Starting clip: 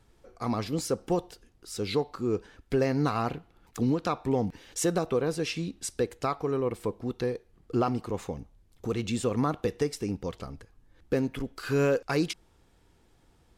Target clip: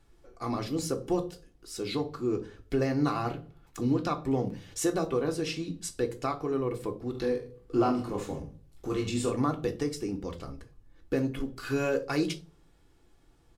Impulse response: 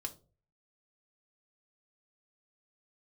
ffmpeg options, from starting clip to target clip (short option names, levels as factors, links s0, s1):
-filter_complex "[0:a]asplit=3[s0][s1][s2];[s0]afade=t=out:st=7.13:d=0.02[s3];[s1]aecho=1:1:20|44|72.8|107.4|148.8:0.631|0.398|0.251|0.158|0.1,afade=t=in:st=7.13:d=0.02,afade=t=out:st=9.3:d=0.02[s4];[s2]afade=t=in:st=9.3:d=0.02[s5];[s3][s4][s5]amix=inputs=3:normalize=0[s6];[1:a]atrim=start_sample=2205[s7];[s6][s7]afir=irnorm=-1:irlink=0"